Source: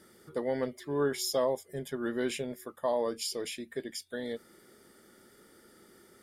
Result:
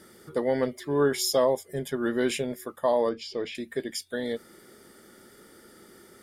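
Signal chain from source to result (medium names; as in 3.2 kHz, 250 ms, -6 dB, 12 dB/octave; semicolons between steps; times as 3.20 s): 3.09–3.55 s: distance through air 220 m; trim +6 dB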